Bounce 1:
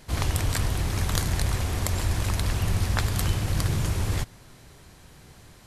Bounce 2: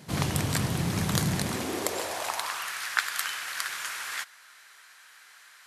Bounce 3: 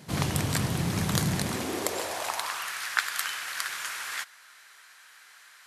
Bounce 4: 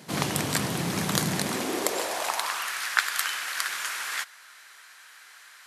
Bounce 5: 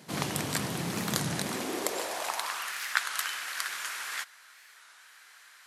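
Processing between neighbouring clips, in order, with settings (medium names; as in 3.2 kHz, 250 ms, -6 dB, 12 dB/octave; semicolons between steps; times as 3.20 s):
high-pass sweep 160 Hz -> 1.5 kHz, 1.31–2.73 s
no audible change
high-pass 190 Hz 12 dB/octave; trim +3 dB
warped record 33 1/3 rpm, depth 160 cents; trim -4.5 dB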